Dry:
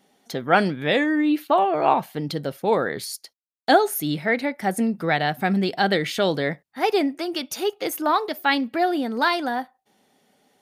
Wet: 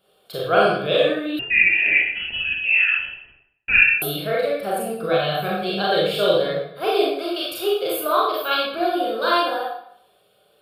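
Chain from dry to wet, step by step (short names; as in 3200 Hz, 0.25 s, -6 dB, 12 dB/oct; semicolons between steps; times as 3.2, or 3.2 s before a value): dynamic EQ 1800 Hz, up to -4 dB, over -37 dBFS, Q 1.4; fixed phaser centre 1300 Hz, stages 8; reverb RT60 0.70 s, pre-delay 29 ms, DRR -6 dB; 1.39–4.02 inverted band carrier 3100 Hz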